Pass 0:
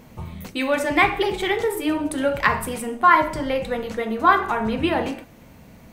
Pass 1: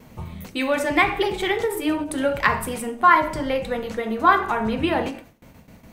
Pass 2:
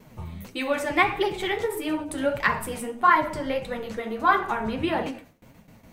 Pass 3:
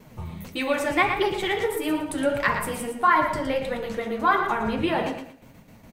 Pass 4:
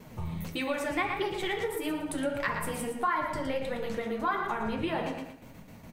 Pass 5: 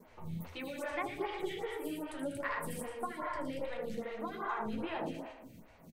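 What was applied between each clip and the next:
noise gate with hold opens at −37 dBFS; every ending faded ahead of time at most 140 dB per second
flanger 1.6 Hz, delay 4.6 ms, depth 8.4 ms, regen +34%
in parallel at −2 dB: brickwall limiter −16.5 dBFS, peak gain reduction 10 dB; on the sum: repeating echo 115 ms, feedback 25%, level −8.5 dB; level −3.5 dB
downward compressor 2 to 1, threshold −34 dBFS, peak gain reduction 11 dB; on a send at −12 dB: convolution reverb RT60 0.55 s, pre-delay 11 ms
on a send: loudspeakers that aren't time-aligned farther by 27 metres −4 dB, 80 metres −9 dB; on the sum: phaser with staggered stages 2.5 Hz; level −6 dB

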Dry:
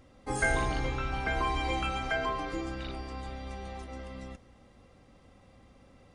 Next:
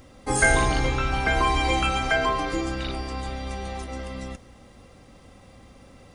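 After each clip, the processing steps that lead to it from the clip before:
high-shelf EQ 5,700 Hz +8 dB
level +8 dB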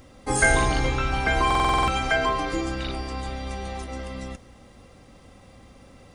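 buffer that repeats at 0:01.46, samples 2,048, times 8

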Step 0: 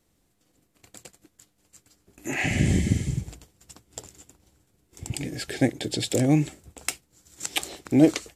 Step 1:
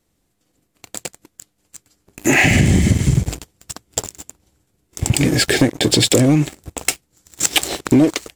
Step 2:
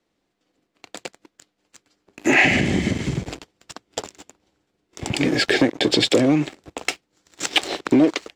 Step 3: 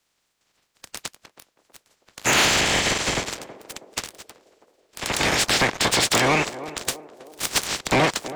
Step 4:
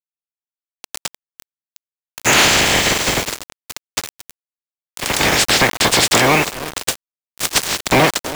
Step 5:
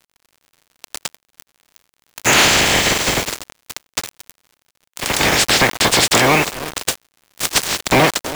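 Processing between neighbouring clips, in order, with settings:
downward compressor 10 to 1, threshold −27 dBFS, peak gain reduction 16.5 dB; leveller curve on the samples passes 3; level +7 dB
three-way crossover with the lows and the highs turned down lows −14 dB, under 210 Hz, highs −20 dB, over 5,400 Hz; level −1 dB
ceiling on every frequency bin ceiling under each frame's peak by 27 dB; soft clipping −15 dBFS, distortion −10 dB; feedback echo with a band-pass in the loop 322 ms, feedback 57%, band-pass 470 Hz, level −12.5 dB; level +1.5 dB
bit reduction 5 bits; level +6 dB
surface crackle 97 per second −38 dBFS

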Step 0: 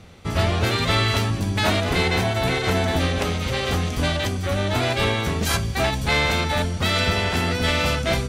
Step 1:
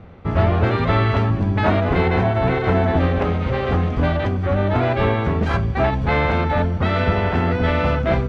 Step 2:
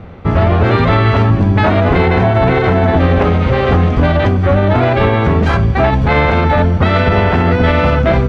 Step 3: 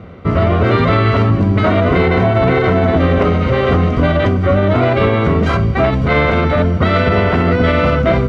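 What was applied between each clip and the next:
low-pass filter 1,500 Hz 12 dB per octave; level +4.5 dB
brickwall limiter −11.5 dBFS, peak gain reduction 6 dB; level +9 dB
notch comb filter 840 Hz

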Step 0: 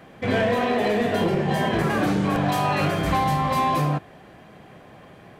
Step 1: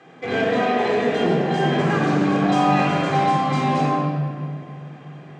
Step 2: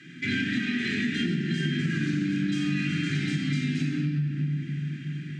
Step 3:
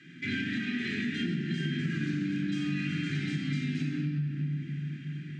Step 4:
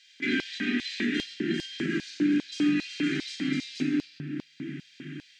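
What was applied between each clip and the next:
elliptic band-pass filter 150–7,400 Hz, stop band 40 dB; rectangular room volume 3,700 cubic metres, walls mixed, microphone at 3.8 metres; level −3 dB
inverse Chebyshev band-stop filter 460–1,100 Hz, stop band 40 dB; downward compressor 6 to 1, threshold −30 dBFS, peak gain reduction 12.5 dB; level +5.5 dB
high-shelf EQ 6,800 Hz −8 dB; hum removal 63.52 Hz, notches 32; level −4 dB
auto-filter high-pass square 2.5 Hz 330–4,500 Hz; level +5 dB

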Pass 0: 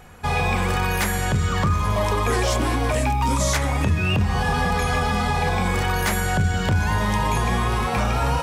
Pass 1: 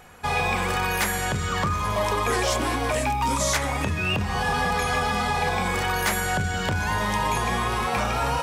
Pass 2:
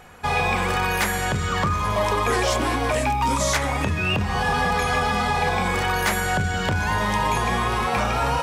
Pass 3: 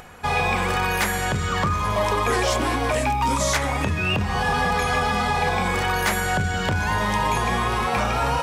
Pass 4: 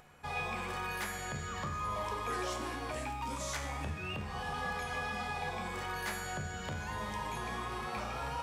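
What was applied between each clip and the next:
low-shelf EQ 250 Hz −8.5 dB
high-shelf EQ 5,900 Hz −4.5 dB; level +2.5 dB
upward compression, threshold −39 dBFS
tuned comb filter 73 Hz, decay 0.84 s, harmonics all, mix 80%; level −6 dB

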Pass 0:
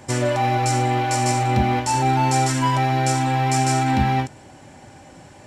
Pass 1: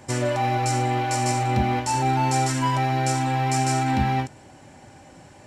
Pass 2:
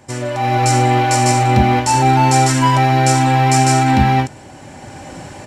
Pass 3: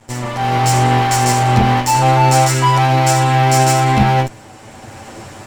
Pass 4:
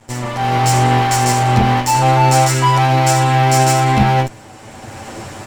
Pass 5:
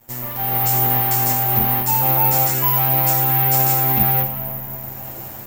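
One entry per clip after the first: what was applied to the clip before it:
notch filter 3,400 Hz, Q 29; level −3 dB
automatic gain control gain up to 15.5 dB
lower of the sound and its delayed copy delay 9.1 ms; level +1 dB
automatic gain control gain up to 3.5 dB
comb and all-pass reverb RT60 4.5 s, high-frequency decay 0.45×, pre-delay 10 ms, DRR 7.5 dB; bad sample-rate conversion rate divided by 3×, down none, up zero stuff; level −10 dB

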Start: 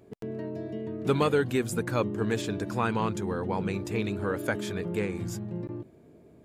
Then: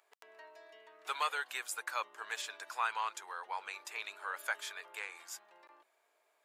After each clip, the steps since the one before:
high-pass filter 880 Hz 24 dB per octave
level −2.5 dB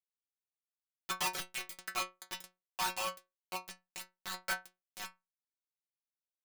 bit reduction 5 bits
stiff-string resonator 180 Hz, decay 0.23 s, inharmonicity 0.002
level +11 dB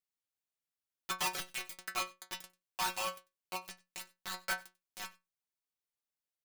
single-tap delay 95 ms −23.5 dB

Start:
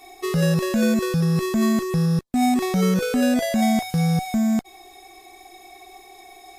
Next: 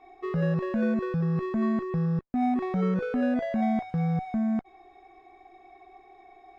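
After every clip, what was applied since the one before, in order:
Chebyshev low-pass filter 1,500 Hz, order 2
level −5.5 dB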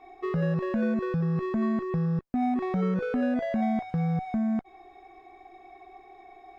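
downward compressor 1.5 to 1, threshold −31 dBFS, peak gain reduction 4 dB
level +2.5 dB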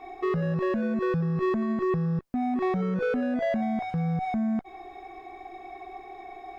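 brickwall limiter −28.5 dBFS, peak gain reduction 10.5 dB
level +7.5 dB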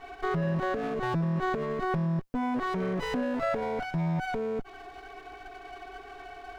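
lower of the sound and its delayed copy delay 7.1 ms

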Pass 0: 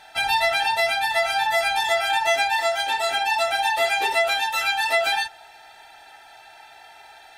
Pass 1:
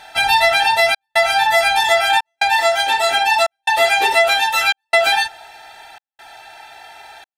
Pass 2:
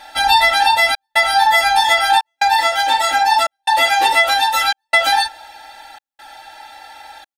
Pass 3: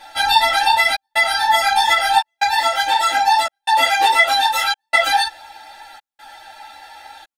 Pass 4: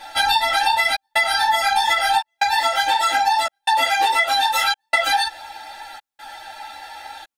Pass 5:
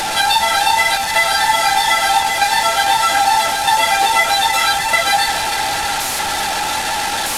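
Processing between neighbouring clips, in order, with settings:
gate pattern "xxxxxxxxx..x" 143 BPM −60 dB; level +7 dB
comb filter 3.6 ms, depth 92%; level −1 dB
string-ensemble chorus; level +1.5 dB
downward compressor, threshold −18 dBFS, peak gain reduction 10 dB; level +3 dB
linear delta modulator 64 kbit/s, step −17 dBFS; delay that swaps between a low-pass and a high-pass 151 ms, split 1,400 Hz, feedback 84%, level −9 dB; level +3 dB

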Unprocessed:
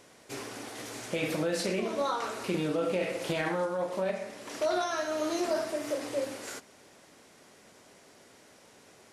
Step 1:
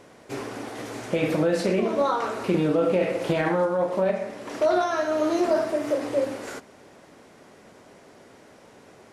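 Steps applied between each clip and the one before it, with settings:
high-shelf EQ 2,400 Hz −11.5 dB
level +8.5 dB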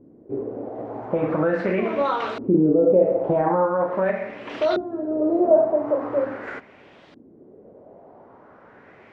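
auto-filter low-pass saw up 0.42 Hz 270–3,800 Hz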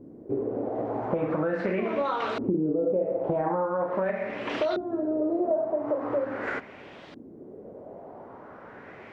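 downward compressor 4 to 1, threshold −29 dBFS, peak gain reduction 15 dB
level +3.5 dB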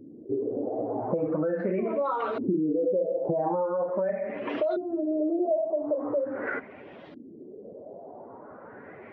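expanding power law on the bin magnitudes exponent 1.6

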